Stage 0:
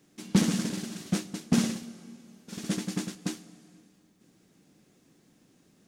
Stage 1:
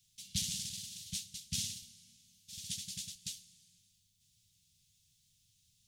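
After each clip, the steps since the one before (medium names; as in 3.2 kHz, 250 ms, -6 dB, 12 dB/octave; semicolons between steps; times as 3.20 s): Chebyshev band-stop 100–3300 Hz, order 3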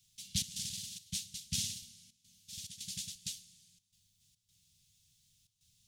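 trance gate "xxx.xxx.xxxx" 107 bpm -12 dB; trim +1.5 dB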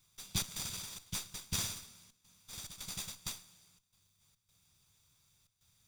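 comb filter that takes the minimum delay 0.85 ms; trim +1 dB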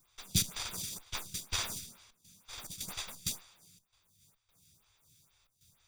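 lamp-driven phase shifter 2.1 Hz; trim +7 dB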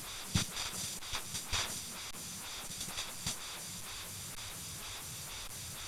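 one-bit delta coder 64 kbps, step -37.5 dBFS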